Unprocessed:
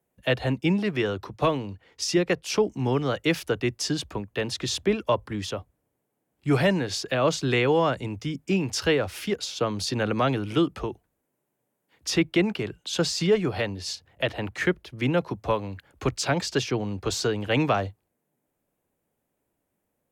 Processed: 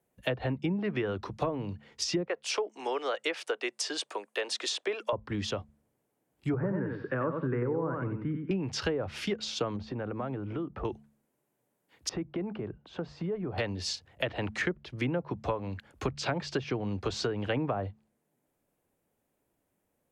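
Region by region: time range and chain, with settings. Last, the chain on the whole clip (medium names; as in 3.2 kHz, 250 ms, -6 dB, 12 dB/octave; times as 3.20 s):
2.25–5.13 s: high-pass 430 Hz 24 dB/octave + peaking EQ 8.9 kHz +9.5 dB 0.54 oct
6.54–8.51 s: elliptic band-pass 110–1600 Hz, stop band 60 dB + peaking EQ 690 Hz -14.5 dB 0.38 oct + feedback delay 91 ms, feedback 26%, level -6 dB
9.76–10.85 s: low-pass 1.3 kHz + compression 4:1, threshold -32 dBFS
12.09–13.58 s: low-pass 1.1 kHz + compression 2.5:1, threshold -34 dBFS
whole clip: low-pass that closes with the level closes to 930 Hz, closed at -18 dBFS; de-hum 72.41 Hz, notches 3; compression 4:1, threshold -28 dBFS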